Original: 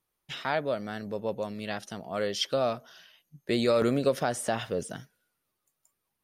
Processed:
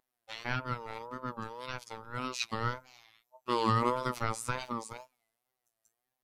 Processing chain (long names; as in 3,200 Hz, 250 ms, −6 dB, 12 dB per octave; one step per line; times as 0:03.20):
ring modulation 720 Hz
phases set to zero 120 Hz
tape wow and flutter 120 cents